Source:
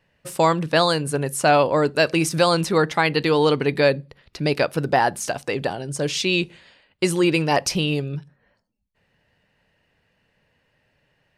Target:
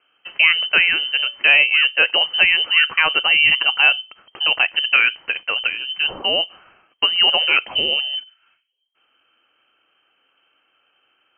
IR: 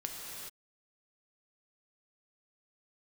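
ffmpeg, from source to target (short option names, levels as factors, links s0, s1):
-filter_complex "[0:a]asettb=1/sr,asplit=3[s0][s1][s2];[s0]atrim=end=3.914[s3];[s1]atrim=start=3.91:end=4.44,asetpts=PTS-STARTPTS,afade=t=in:d=0.004:c=qsin,afade=t=out:st=0.526:d=0.004:c=qsin,aemphasis=mode=production:type=75kf[s4];[s2]atrim=start=4.436[s5];[s3][s4]acrossfade=d=0.004:c1=hsin:c2=qsin[s6];[s6][s5]acrossfade=d=0.004:c1=qsin:c2=hsin,lowpass=f=2700:t=q:w=0.5098,lowpass=f=2700:t=q:w=0.6013,lowpass=f=2700:t=q:w=0.9,lowpass=f=2700:t=q:w=2.563,afreqshift=-3200,asettb=1/sr,asplit=3[s7][s8][s9];[s7]atrim=end=0.684[s10];[s8]atrim=start=0.68:end=1.51,asetpts=PTS-STARTPTS,afade=t=in:d=0.004:c=qsin,afade=t=out:st=0.826:d=0.004:c=qsin,bandreject=f=287.6:t=h:w=4,bandreject=f=575.2:t=h:w=4,bandreject=f=862.8:t=h:w=4,bandreject=f=1150.4:t=h:w=4,bandreject=f=1438:t=h:w=4,bandreject=f=1725.6:t=h:w=4,bandreject=f=2013.2:t=h:w=4,bandreject=f=2300.8:t=h:w=4,bandreject=f=2588.4:t=h:w=4,bandreject=f=2876:t=h:w=4,bandreject=f=3163.6:t=h:w=4,bandreject=f=3451.2:t=h:w=4,bandreject=f=3738.8:t=h:w=4,bandreject=f=4026.4:t=h:w=4,bandreject=f=4314:t=h:w=4,bandreject=f=4601.6:t=h:w=4,bandreject=f=4889.2:t=h:w=4,bandreject=f=5176.8:t=h:w=4,bandreject=f=5464.4:t=h:w=4,bandreject=f=5752:t=h:w=4,bandreject=f=6039.6:t=h:w=4,bandreject=f=6327.2:t=h:w=4,bandreject=f=6614.8:t=h:w=4,bandreject=f=6902.4:t=h:w=4,bandreject=f=7190:t=h:w=4,bandreject=f=7477.6:t=h:w=4,bandreject=f=7765.2:t=h:w=4,bandreject=f=8052.8:t=h:w=4[s11];[s9]atrim=start=1.506[s12];[s10][s11]acrossfade=d=0.004:c1=hsin:c2=qsin[s13];[s13][s12]acrossfade=d=0.004:c1=qsin:c2=hsin,volume=1.41"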